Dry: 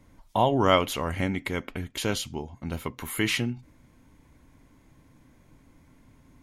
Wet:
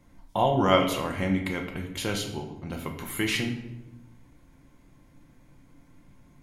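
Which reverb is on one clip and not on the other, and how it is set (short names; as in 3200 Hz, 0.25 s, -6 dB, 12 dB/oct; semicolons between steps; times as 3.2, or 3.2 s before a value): shoebox room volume 320 m³, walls mixed, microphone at 0.85 m; gain -2.5 dB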